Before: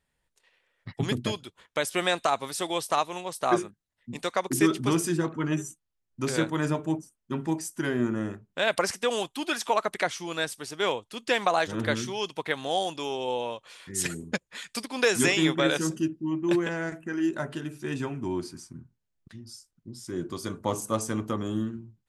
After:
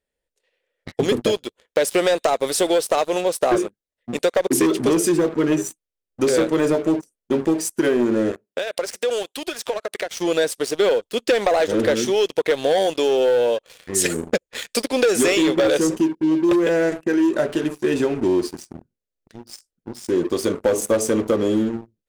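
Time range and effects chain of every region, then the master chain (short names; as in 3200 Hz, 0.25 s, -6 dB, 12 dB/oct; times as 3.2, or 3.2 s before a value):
8.31–10.17 HPF 420 Hz 6 dB/oct + compressor, threshold -36 dBFS
whole clip: graphic EQ 125/500/1000 Hz -10/+12/-8 dB; sample leveller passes 3; compressor, threshold -15 dBFS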